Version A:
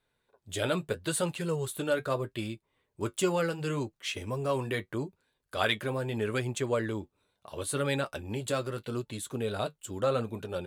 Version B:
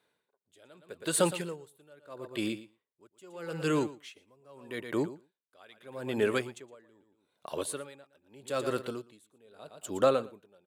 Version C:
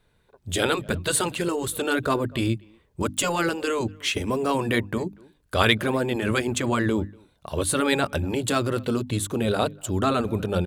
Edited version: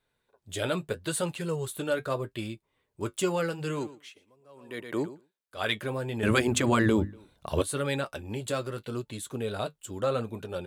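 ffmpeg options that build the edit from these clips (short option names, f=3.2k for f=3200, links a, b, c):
-filter_complex "[0:a]asplit=3[a][b][c];[a]atrim=end=3.95[d];[1:a]atrim=start=3.71:end=5.71[e];[b]atrim=start=5.47:end=6.232[f];[2:a]atrim=start=6.228:end=7.622[g];[c]atrim=start=7.618[h];[d][e]acrossfade=d=0.24:c1=tri:c2=tri[i];[i][f]acrossfade=d=0.24:c1=tri:c2=tri[j];[j][g]acrossfade=d=0.004:c1=hsin:c2=hsin[k];[k][h]acrossfade=d=0.004:c1=hsin:c2=hsin"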